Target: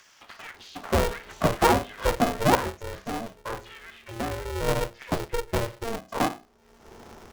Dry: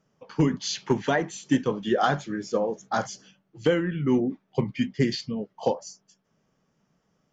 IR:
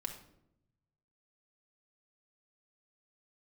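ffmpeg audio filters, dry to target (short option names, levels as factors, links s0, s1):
-filter_complex "[0:a]asoftclip=type=tanh:threshold=0.15,acrossover=split=2000[s0][s1];[s0]adelay=540[s2];[s2][s1]amix=inputs=2:normalize=0,acompressor=mode=upward:threshold=0.0501:ratio=2.5,lowshelf=f=100:g=10.5,flanger=delay=8.1:depth=7.5:regen=73:speed=0.42:shape=sinusoidal,asetnsamples=n=441:p=0,asendcmd='2.55 equalizer g -2.5;4.68 equalizer g 7.5',equalizer=f=700:t=o:w=2:g=14,bandreject=f=60:t=h:w=6,bandreject=f=120:t=h:w=6,bandreject=f=180:t=h:w=6,bandreject=f=240:t=h:w=6,bandreject=f=300:t=h:w=6,bandreject=f=360:t=h:w=6,bandreject=f=420:t=h:w=6,bandreject=f=480:t=h:w=6,bandreject=f=540:t=h:w=6,acrossover=split=2600[s3][s4];[s4]acompressor=threshold=0.00158:ratio=4:attack=1:release=60[s5];[s3][s5]amix=inputs=2:normalize=0,bandreject=f=2500:w=8.8,aeval=exprs='val(0)*sgn(sin(2*PI*230*n/s))':c=same"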